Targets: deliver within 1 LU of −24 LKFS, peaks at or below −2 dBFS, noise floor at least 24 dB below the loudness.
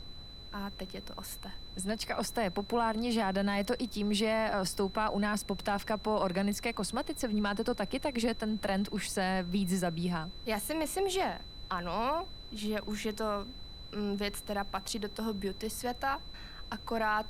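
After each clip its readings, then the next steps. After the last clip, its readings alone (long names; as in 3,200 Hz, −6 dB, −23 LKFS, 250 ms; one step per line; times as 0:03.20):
interfering tone 4,000 Hz; level of the tone −49 dBFS; background noise floor −47 dBFS; target noise floor −58 dBFS; integrated loudness −34.0 LKFS; sample peak −19.0 dBFS; target loudness −24.0 LKFS
→ notch filter 4,000 Hz, Q 30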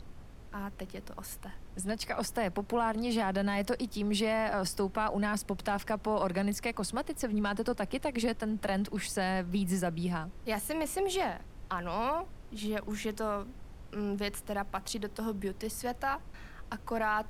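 interfering tone none found; background noise floor −49 dBFS; target noise floor −58 dBFS
→ noise reduction from a noise print 9 dB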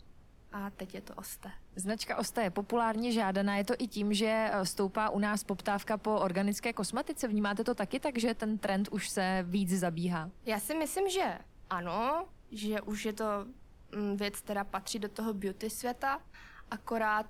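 background noise floor −57 dBFS; target noise floor −58 dBFS
→ noise reduction from a noise print 6 dB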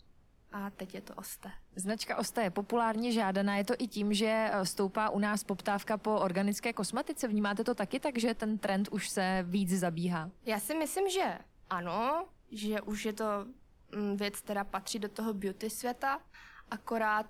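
background noise floor −62 dBFS; integrated loudness −34.0 LKFS; sample peak −20.0 dBFS; target loudness −24.0 LKFS
→ level +10 dB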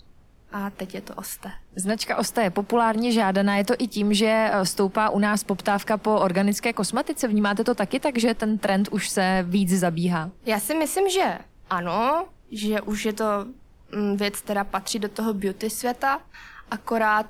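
integrated loudness −24.0 LKFS; sample peak −10.0 dBFS; background noise floor −52 dBFS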